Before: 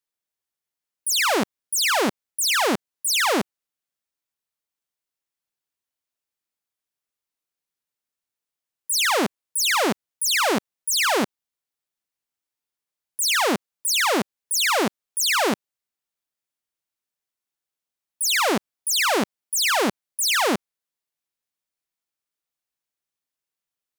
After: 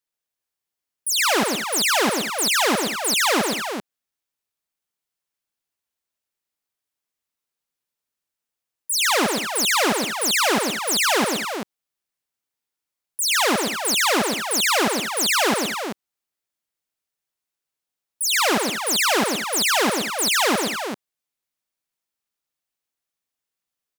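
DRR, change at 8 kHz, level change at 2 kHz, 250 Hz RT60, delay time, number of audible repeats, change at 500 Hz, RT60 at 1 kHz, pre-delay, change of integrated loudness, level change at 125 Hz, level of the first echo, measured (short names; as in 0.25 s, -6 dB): none, +2.0 dB, +2.0 dB, none, 0.12 s, 3, +2.0 dB, none, none, +1.5 dB, +2.0 dB, -4.5 dB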